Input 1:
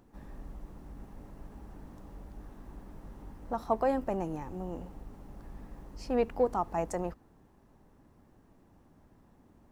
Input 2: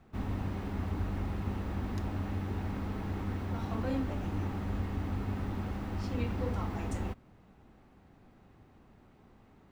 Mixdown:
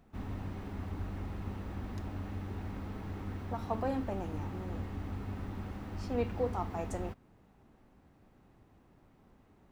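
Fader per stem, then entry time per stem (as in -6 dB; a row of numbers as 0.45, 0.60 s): -6.5, -5.0 dB; 0.00, 0.00 s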